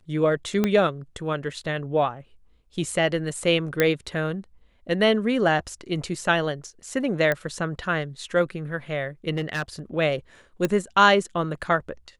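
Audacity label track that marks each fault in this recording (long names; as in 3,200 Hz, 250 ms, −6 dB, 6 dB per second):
0.640000	0.640000	click −9 dBFS
3.800000	3.800000	click −6 dBFS
7.320000	7.320000	click −11 dBFS
9.340000	9.630000	clipping −22 dBFS
10.650000	10.650000	click −10 dBFS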